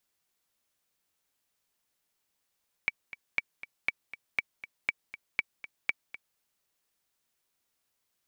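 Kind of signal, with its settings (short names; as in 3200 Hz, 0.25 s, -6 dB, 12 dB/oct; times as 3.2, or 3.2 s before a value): metronome 239 bpm, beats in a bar 2, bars 7, 2290 Hz, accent 15 dB -13 dBFS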